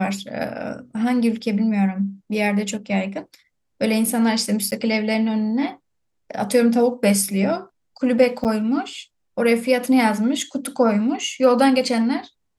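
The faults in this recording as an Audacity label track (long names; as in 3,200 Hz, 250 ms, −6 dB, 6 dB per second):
4.710000	4.720000	drop-out 9.6 ms
8.440000	8.450000	drop-out 8.4 ms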